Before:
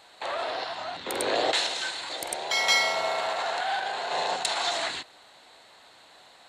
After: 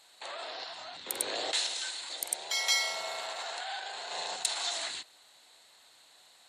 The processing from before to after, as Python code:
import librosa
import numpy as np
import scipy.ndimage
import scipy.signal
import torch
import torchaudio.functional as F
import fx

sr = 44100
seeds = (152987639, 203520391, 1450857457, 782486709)

y = librosa.effects.preemphasis(x, coef=0.8, zi=[0.0])
y = fx.spec_gate(y, sr, threshold_db=-30, keep='strong')
y = y * 10.0 ** (1.5 / 20.0)